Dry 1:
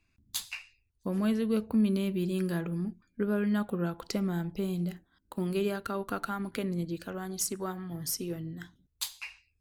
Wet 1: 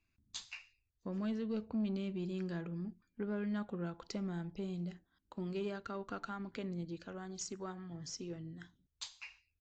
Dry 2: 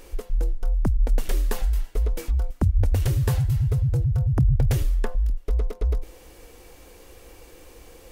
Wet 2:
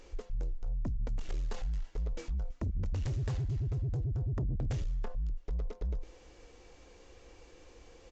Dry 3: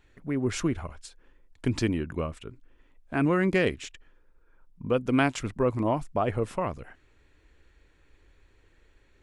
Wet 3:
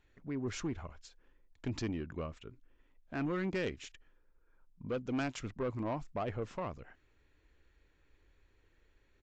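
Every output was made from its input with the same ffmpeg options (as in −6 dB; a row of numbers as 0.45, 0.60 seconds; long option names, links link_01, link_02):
-af "aresample=16000,asoftclip=type=tanh:threshold=-21dB,aresample=44100,volume=-8dB" -ar 22050 -c:a aac -b:a 96k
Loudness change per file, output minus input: −9.0, −12.0, −10.5 LU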